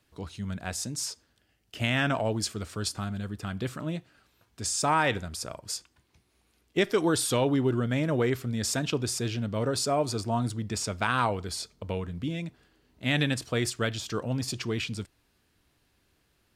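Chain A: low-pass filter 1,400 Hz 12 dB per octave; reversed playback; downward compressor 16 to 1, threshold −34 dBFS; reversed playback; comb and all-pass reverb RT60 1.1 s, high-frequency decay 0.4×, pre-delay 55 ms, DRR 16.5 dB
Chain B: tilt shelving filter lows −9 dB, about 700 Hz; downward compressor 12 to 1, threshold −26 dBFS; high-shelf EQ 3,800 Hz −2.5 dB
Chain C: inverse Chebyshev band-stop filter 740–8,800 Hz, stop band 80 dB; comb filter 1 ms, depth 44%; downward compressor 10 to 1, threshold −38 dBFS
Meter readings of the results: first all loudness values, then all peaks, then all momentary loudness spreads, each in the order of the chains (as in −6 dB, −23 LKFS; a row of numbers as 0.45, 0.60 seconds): −40.0, −32.5, −43.5 LKFS; −24.5, −11.0, −31.5 dBFS; 7, 8, 7 LU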